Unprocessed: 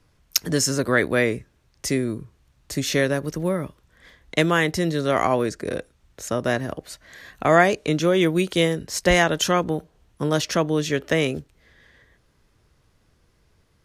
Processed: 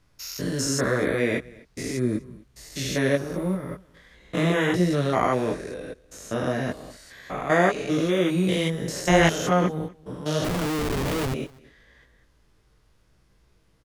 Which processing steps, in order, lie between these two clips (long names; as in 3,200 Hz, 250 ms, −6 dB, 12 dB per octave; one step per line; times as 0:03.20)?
spectrum averaged block by block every 200 ms
multi-voice chorus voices 6, 0.9 Hz, delay 19 ms, depth 3.6 ms
0:10.44–0:11.34: comparator with hysteresis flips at −29 dBFS
on a send: single-tap delay 248 ms −23.5 dB
on the sum: level +3 dB